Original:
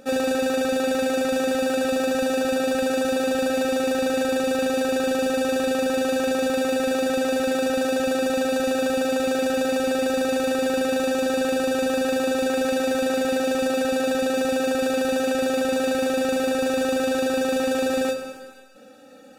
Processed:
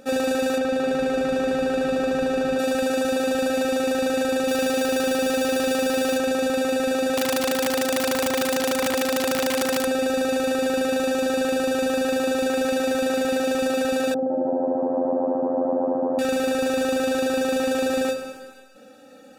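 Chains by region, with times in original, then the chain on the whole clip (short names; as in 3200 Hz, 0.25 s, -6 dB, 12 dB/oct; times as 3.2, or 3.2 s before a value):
0.58–2.59 LPF 2800 Hz 6 dB/oct + frequency-shifting echo 0.205 s, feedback 59%, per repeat -110 Hz, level -18 dB
4.48–6.18 median filter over 9 samples + high shelf 3300 Hz +9 dB
7.16–9.85 wrapped overs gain 17 dB + HPF 100 Hz 6 dB/oct
14.14–16.19 elliptic band-pass 130–850 Hz, stop band 60 dB + frequency-shifting echo 0.16 s, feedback 64%, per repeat +90 Hz, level -9.5 dB
whole clip: dry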